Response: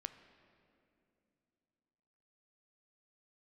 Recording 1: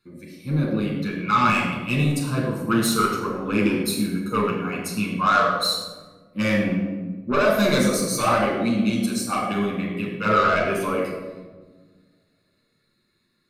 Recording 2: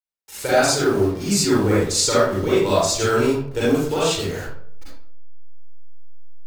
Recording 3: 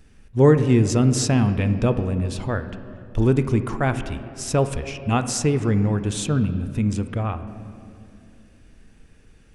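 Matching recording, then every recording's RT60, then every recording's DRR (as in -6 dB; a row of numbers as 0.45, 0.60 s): 3; 1.4, 0.65, 2.8 s; -3.0, -9.5, 9.5 dB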